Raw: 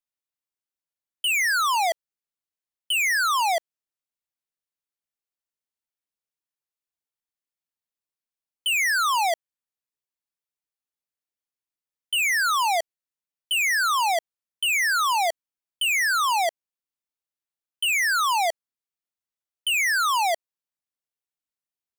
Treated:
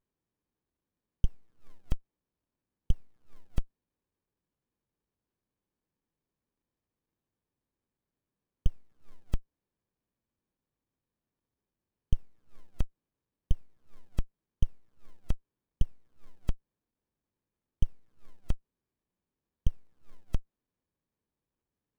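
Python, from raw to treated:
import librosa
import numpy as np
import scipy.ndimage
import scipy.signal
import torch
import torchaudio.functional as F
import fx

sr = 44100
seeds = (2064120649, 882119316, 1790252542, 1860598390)

y = fx.dynamic_eq(x, sr, hz=3300.0, q=4.8, threshold_db=-44.0, ratio=4.0, max_db=6)
y = fx.running_max(y, sr, window=65)
y = y * librosa.db_to_amplitude(6.0)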